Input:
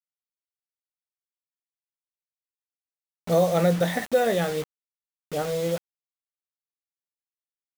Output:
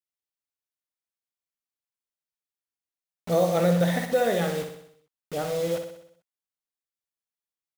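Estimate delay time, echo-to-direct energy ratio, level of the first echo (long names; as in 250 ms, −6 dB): 63 ms, −6.0 dB, −7.5 dB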